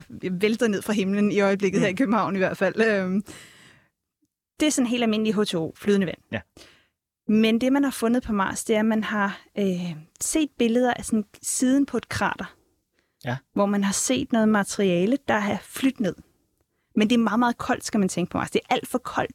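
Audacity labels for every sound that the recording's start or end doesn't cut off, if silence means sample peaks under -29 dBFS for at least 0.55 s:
4.600000	6.380000	sound
7.290000	12.460000	sound
13.260000	16.130000	sound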